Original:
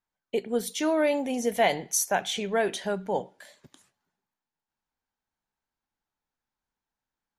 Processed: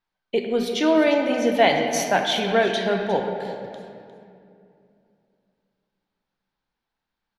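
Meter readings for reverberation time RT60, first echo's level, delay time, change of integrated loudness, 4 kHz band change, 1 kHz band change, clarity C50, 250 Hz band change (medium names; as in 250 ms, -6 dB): 2.5 s, -14.0 dB, 354 ms, +6.0 dB, +8.0 dB, +6.5 dB, 4.0 dB, +7.5 dB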